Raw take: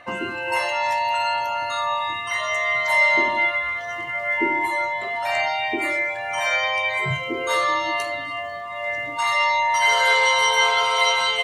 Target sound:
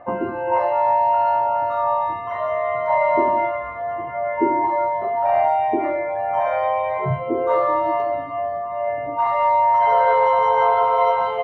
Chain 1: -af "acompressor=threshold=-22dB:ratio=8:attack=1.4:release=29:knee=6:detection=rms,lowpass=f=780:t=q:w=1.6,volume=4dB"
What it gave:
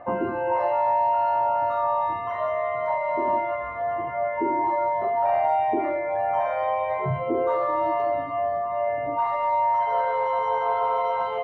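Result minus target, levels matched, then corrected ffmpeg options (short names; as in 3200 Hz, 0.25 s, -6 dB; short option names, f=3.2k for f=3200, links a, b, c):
compressor: peak gain reduction +10 dB
-af "lowpass=f=780:t=q:w=1.6,volume=4dB"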